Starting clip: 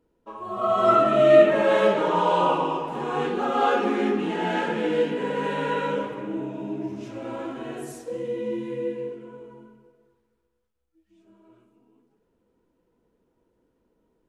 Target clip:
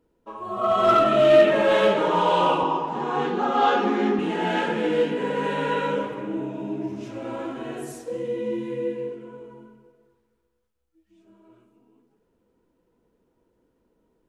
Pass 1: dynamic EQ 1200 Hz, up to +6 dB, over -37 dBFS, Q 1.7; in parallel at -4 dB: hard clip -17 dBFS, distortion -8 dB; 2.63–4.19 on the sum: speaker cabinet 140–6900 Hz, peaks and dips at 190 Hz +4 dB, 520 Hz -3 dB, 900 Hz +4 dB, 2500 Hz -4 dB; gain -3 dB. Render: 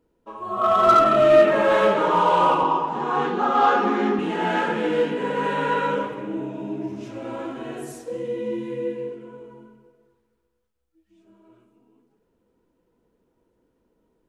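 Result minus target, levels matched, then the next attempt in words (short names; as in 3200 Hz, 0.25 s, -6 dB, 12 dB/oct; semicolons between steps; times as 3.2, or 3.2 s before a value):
4000 Hz band -4.0 dB
dynamic EQ 3300 Hz, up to +6 dB, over -37 dBFS, Q 1.7; in parallel at -4 dB: hard clip -17 dBFS, distortion -10 dB; 2.63–4.19 on the sum: speaker cabinet 140–6900 Hz, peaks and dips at 190 Hz +4 dB, 520 Hz -3 dB, 900 Hz +4 dB, 2500 Hz -4 dB; gain -3 dB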